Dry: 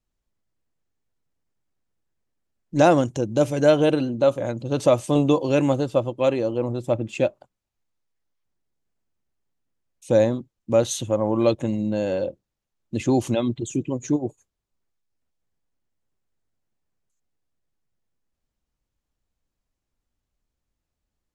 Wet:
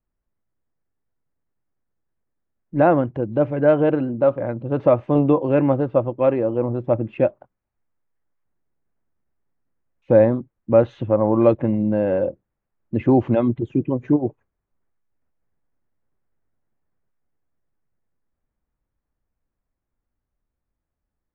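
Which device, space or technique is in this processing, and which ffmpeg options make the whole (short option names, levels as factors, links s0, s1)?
action camera in a waterproof case: -af "lowpass=f=2000:w=0.5412,lowpass=f=2000:w=1.3066,dynaudnorm=f=730:g=13:m=2.24" -ar 24000 -c:a aac -b:a 96k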